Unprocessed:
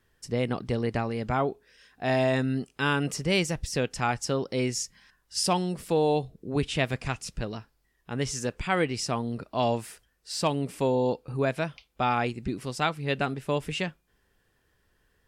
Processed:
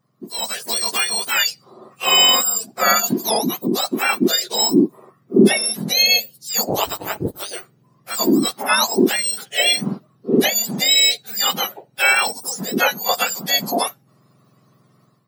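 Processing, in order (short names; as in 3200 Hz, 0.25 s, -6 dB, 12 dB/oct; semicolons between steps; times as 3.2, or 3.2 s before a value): spectrum mirrored in octaves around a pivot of 1400 Hz; 3.07–4.09 compressor, threshold -28 dBFS, peak gain reduction 6.5 dB; 6.69–7.53 ring modulator 100 Hz; AGC gain up to 12 dB; gain +1 dB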